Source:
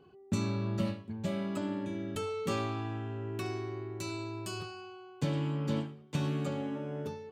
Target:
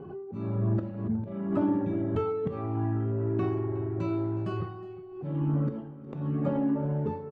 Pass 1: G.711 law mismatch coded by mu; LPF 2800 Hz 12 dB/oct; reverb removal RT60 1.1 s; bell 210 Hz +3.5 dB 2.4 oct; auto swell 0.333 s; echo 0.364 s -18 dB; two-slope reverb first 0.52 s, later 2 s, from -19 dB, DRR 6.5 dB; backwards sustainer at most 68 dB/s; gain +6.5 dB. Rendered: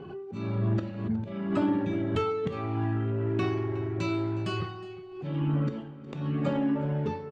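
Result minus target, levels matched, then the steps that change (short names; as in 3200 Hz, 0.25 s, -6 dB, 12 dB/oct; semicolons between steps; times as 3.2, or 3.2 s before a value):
2000 Hz band +8.5 dB
change: LPF 1100 Hz 12 dB/oct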